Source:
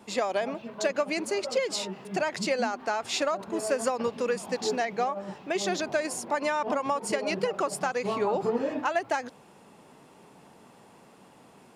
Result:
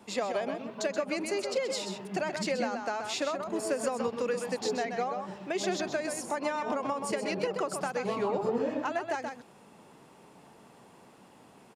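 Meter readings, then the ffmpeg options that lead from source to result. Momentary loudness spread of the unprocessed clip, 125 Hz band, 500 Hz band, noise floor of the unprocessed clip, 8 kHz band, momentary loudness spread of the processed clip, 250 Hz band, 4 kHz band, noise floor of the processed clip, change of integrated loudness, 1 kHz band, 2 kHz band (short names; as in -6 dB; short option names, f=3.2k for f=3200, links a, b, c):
3 LU, -1.0 dB, -3.0 dB, -55 dBFS, -3.5 dB, 4 LU, -1.5 dB, -3.5 dB, -56 dBFS, -3.0 dB, -4.0 dB, -4.0 dB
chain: -filter_complex "[0:a]asplit=2[a][b];[b]adelay=128.3,volume=-7dB,highshelf=f=4k:g=-2.89[c];[a][c]amix=inputs=2:normalize=0,acrossover=split=460[d][e];[e]acompressor=threshold=-31dB:ratio=2[f];[d][f]amix=inputs=2:normalize=0,volume=-2dB"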